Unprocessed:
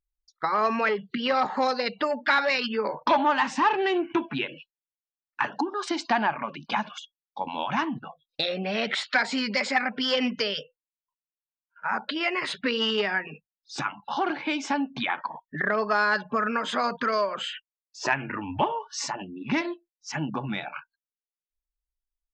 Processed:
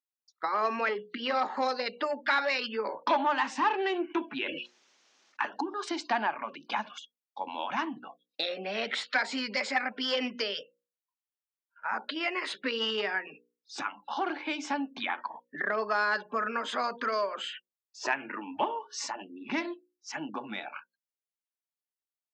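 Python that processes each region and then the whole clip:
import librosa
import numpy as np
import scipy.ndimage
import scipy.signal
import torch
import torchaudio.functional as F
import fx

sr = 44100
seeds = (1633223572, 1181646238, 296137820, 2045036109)

y = fx.chain(x, sr, fx.cheby1_lowpass(hz=6300.0, order=4),
    fx.low_shelf(hz=95.0, db=10.0),
    fx.sustainer(db_per_s=37.0), at=(4.29, 5.4))
y = scipy.signal.sosfilt(scipy.signal.butter(4, 240.0, 'highpass', fs=sr, output='sos'), y)
y = fx.hum_notches(y, sr, base_hz=60, count=9)
y = y * librosa.db_to_amplitude(-4.5)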